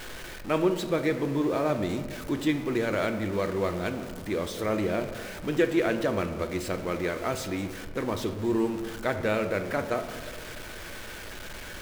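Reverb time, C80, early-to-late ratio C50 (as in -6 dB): 1.8 s, 11.5 dB, 10.0 dB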